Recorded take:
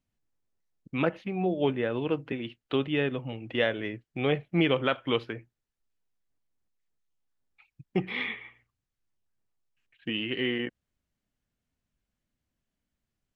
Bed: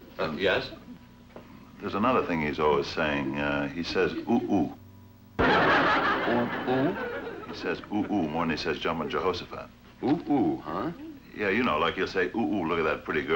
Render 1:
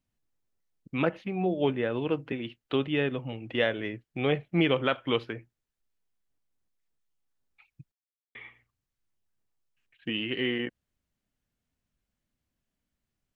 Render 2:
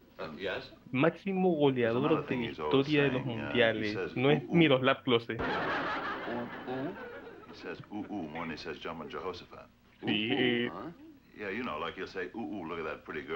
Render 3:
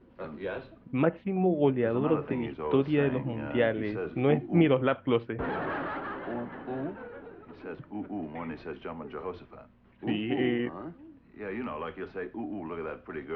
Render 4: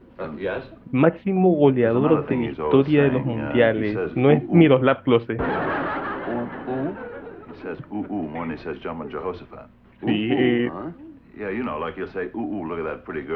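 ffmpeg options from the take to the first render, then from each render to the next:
ffmpeg -i in.wav -filter_complex "[0:a]asplit=3[link_01][link_02][link_03];[link_01]atrim=end=7.92,asetpts=PTS-STARTPTS,afade=type=out:start_time=7.916:duration=0.004:curve=hsin[link_04];[link_02]atrim=start=7.92:end=8.35,asetpts=PTS-STARTPTS,volume=0[link_05];[link_03]atrim=start=8.35,asetpts=PTS-STARTPTS,afade=type=in:duration=0.004:curve=hsin[link_06];[link_04][link_05][link_06]concat=n=3:v=0:a=1" out.wav
ffmpeg -i in.wav -i bed.wav -filter_complex "[1:a]volume=-11dB[link_01];[0:a][link_01]amix=inputs=2:normalize=0" out.wav
ffmpeg -i in.wav -af "lowpass=2300,tiltshelf=frequency=970:gain=3" out.wav
ffmpeg -i in.wav -af "volume=8.5dB" out.wav

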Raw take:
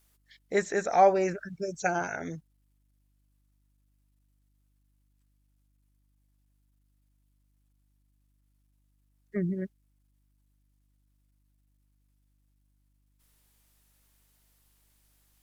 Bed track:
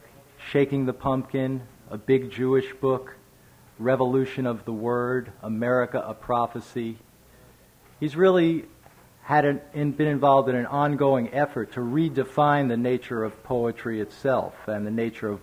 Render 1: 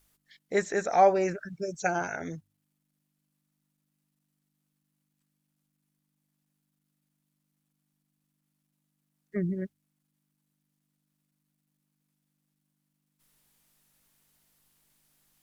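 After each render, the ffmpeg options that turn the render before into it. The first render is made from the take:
ffmpeg -i in.wav -af "bandreject=frequency=50:width_type=h:width=4,bandreject=frequency=100:width_type=h:width=4" out.wav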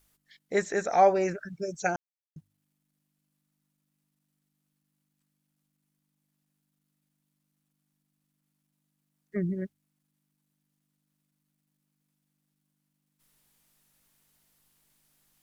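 ffmpeg -i in.wav -filter_complex "[0:a]asplit=3[link_01][link_02][link_03];[link_01]atrim=end=1.96,asetpts=PTS-STARTPTS,afade=type=out:start_time=1.956:duration=0.004:curve=hsin[link_04];[link_02]atrim=start=1.96:end=2.36,asetpts=PTS-STARTPTS,volume=0[link_05];[link_03]atrim=start=2.36,asetpts=PTS-STARTPTS,afade=type=in:duration=0.004:curve=hsin[link_06];[link_04][link_05][link_06]concat=n=3:v=0:a=1" out.wav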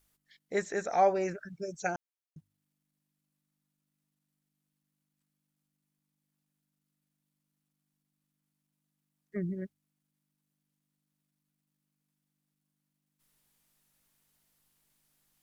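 ffmpeg -i in.wav -af "volume=-4.5dB" out.wav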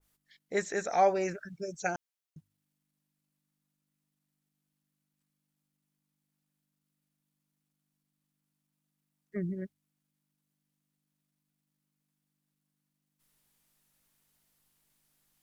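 ffmpeg -i in.wav -af "adynamicequalizer=threshold=0.00794:dfrequency=1900:dqfactor=0.7:tfrequency=1900:tqfactor=0.7:attack=5:release=100:ratio=0.375:range=2:mode=boostabove:tftype=highshelf" out.wav

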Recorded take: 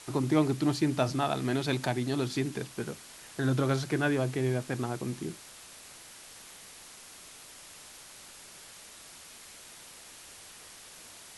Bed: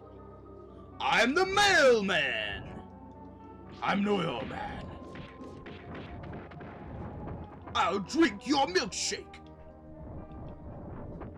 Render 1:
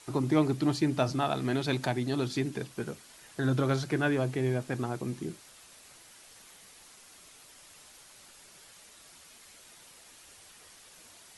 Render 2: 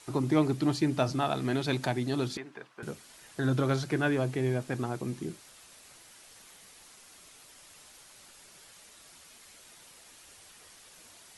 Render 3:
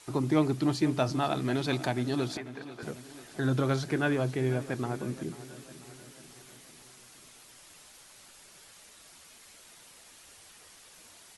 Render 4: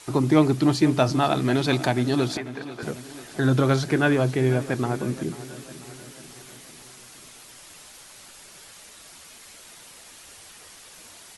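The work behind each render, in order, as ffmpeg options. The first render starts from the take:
ffmpeg -i in.wav -af "afftdn=noise_reduction=6:noise_floor=-50" out.wav
ffmpeg -i in.wav -filter_complex "[0:a]asettb=1/sr,asplit=3[link_01][link_02][link_03];[link_01]atrim=end=2.374[link_04];[link_02]atrim=start=2.37:end=2.83,asetpts=PTS-STARTPTS,afade=type=in:duration=0.004:curve=qsin,afade=type=out:start_time=0.456:duration=0.004:curve=qsin,bandpass=frequency=1200:width_type=q:width=1.2[link_05];[link_03]atrim=start=2.826[link_06];[link_04][link_05]acrossfade=duration=0.004:curve1=hsin:curve2=qsin[link_07];[link_07][link_06]acrossfade=duration=0.004:curve1=qsin:curve2=hsin" out.wav
ffmpeg -i in.wav -af "aecho=1:1:491|982|1473|1964|2455:0.158|0.0888|0.0497|0.0278|0.0156" out.wav
ffmpeg -i in.wav -af "volume=7.5dB" out.wav

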